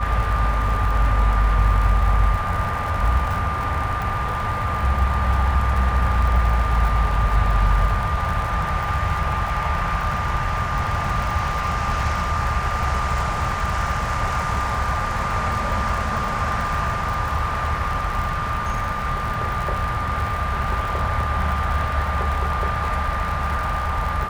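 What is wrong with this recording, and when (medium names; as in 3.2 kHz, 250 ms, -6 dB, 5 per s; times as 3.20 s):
crackle 72 per s -27 dBFS
whine 1.2 kHz -26 dBFS
4.02 s: pop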